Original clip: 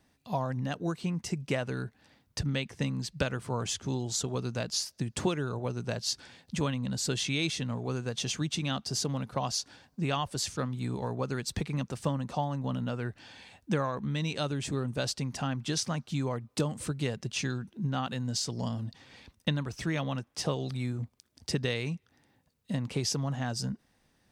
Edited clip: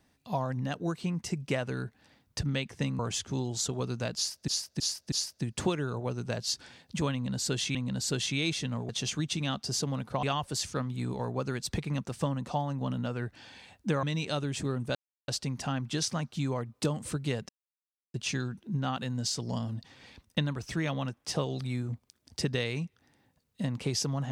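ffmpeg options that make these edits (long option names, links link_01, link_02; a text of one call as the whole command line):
ffmpeg -i in.wav -filter_complex "[0:a]asplit=11[link_01][link_02][link_03][link_04][link_05][link_06][link_07][link_08][link_09][link_10][link_11];[link_01]atrim=end=2.992[link_12];[link_02]atrim=start=3.538:end=5.032[link_13];[link_03]atrim=start=4.708:end=5.032[link_14];[link_04]atrim=start=4.708:end=5.032[link_15];[link_05]atrim=start=4.708:end=7.342[link_16];[link_06]atrim=start=6.718:end=7.862[link_17];[link_07]atrim=start=8.108:end=9.452[link_18];[link_08]atrim=start=10.058:end=13.862[link_19];[link_09]atrim=start=14.108:end=15.03,asetpts=PTS-STARTPTS,afade=type=out:start_time=0.918:duration=0.004:curve=hsin,apad=pad_dur=0.33[link_20];[link_10]atrim=start=15.03:end=17.24,asetpts=PTS-STARTPTS,afade=type=in:duration=0.004:curve=hsin,afade=type=out:start_time=2.206:duration=0.004:curve=hsin,apad=pad_dur=0.65[link_21];[link_11]atrim=start=17.24,asetpts=PTS-STARTPTS,afade=type=in:duration=0.004:curve=hsin[link_22];[link_12][link_13]acrossfade=duration=0.004:curve1=hsin:curve2=hsin[link_23];[link_23][link_14]acrossfade=duration=0.004:curve1=hsin:curve2=hsin[link_24];[link_24][link_15]acrossfade=duration=0.004:curve1=hsin:curve2=hsin[link_25];[link_25][link_16]acrossfade=duration=0.004:curve1=hsin:curve2=hsin[link_26];[link_26][link_17]acrossfade=duration=0.004:curve1=hsin:curve2=hsin[link_27];[link_27][link_18]acrossfade=duration=0.004:curve1=hsin:curve2=hsin[link_28];[link_28][link_19]acrossfade=duration=0.004:curve1=hsin:curve2=hsin[link_29];[link_20][link_21][link_22]concat=n=3:v=0:a=1[link_30];[link_29][link_30]acrossfade=duration=0.004:curve1=hsin:curve2=hsin" out.wav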